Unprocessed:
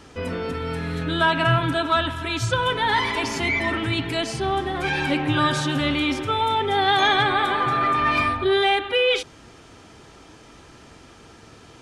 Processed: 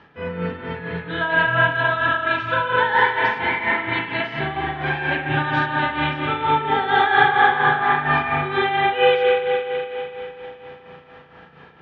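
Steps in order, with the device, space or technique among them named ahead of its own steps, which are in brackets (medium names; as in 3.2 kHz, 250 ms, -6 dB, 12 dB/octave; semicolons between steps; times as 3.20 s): combo amplifier with spring reverb and tremolo (spring tank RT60 3.6 s, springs 34/40 ms, chirp 65 ms, DRR -4.5 dB; tremolo 4.3 Hz, depth 63%; cabinet simulation 82–3500 Hz, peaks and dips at 110 Hz -5 dB, 160 Hz +6 dB, 300 Hz -6 dB, 890 Hz +6 dB, 1.7 kHz +8 dB); trim -3.5 dB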